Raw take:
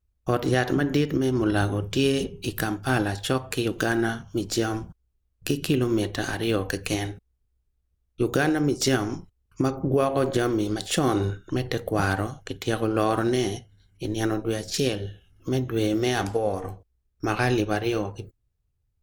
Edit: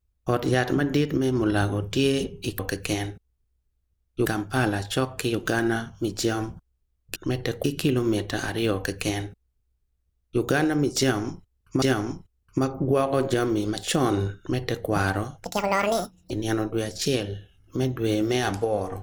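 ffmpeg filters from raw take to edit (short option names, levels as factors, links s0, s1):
-filter_complex "[0:a]asplit=8[s0][s1][s2][s3][s4][s5][s6][s7];[s0]atrim=end=2.592[s8];[s1]atrim=start=6.598:end=8.272[s9];[s2]atrim=start=2.588:end=5.492[s10];[s3]atrim=start=11.418:end=11.902[s11];[s4]atrim=start=5.488:end=9.672[s12];[s5]atrim=start=8.848:end=12.474[s13];[s6]atrim=start=12.47:end=14.03,asetpts=PTS-STARTPTS,asetrate=79380,aresample=44100[s14];[s7]atrim=start=14.026[s15];[s8][s9]acrossfade=d=0.004:c1=hsin:c2=hsin[s16];[s16][s10]acrossfade=d=0.004:c1=hsin:c2=hsin[s17];[s17][s11]acrossfade=d=0.004:c1=hsin:c2=hsin[s18];[s18][s12]acrossfade=d=0.004:c1=hsin:c2=hsin[s19];[s19][s13]acrossfade=d=0.004:c1=hsin:c2=hsin[s20];[s20][s14]acrossfade=d=0.004:c1=hsin:c2=hsin[s21];[s21][s15]acrossfade=d=0.004:c1=hsin:c2=hsin"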